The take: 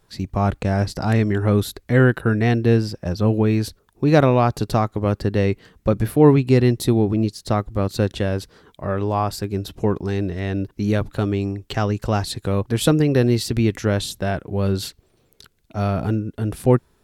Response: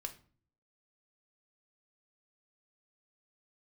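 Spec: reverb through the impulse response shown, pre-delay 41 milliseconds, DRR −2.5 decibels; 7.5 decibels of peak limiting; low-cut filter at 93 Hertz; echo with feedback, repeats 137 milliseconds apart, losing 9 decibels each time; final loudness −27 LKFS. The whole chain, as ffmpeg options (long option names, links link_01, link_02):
-filter_complex "[0:a]highpass=93,alimiter=limit=-9.5dB:level=0:latency=1,aecho=1:1:137|274|411|548:0.355|0.124|0.0435|0.0152,asplit=2[link_01][link_02];[1:a]atrim=start_sample=2205,adelay=41[link_03];[link_02][link_03]afir=irnorm=-1:irlink=0,volume=4.5dB[link_04];[link_01][link_04]amix=inputs=2:normalize=0,volume=-8.5dB"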